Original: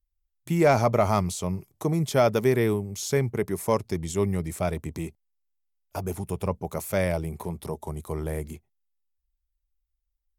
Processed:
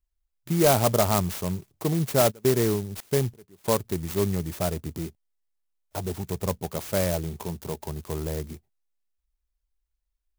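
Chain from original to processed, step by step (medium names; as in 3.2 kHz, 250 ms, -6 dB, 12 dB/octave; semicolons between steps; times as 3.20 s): 2.30–3.64 s: trance gate "xxxxx.xx..." 135 bpm -24 dB; sampling jitter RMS 0.1 ms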